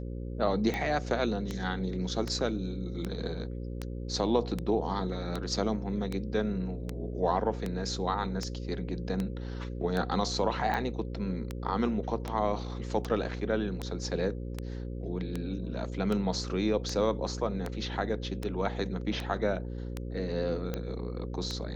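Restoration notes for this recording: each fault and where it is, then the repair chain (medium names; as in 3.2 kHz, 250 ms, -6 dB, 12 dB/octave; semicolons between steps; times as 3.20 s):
buzz 60 Hz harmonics 9 -37 dBFS
tick 78 rpm -19 dBFS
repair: de-click; de-hum 60 Hz, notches 9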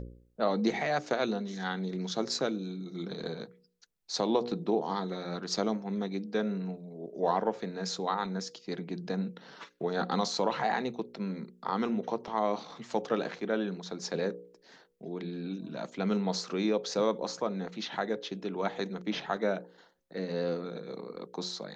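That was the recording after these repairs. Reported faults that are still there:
nothing left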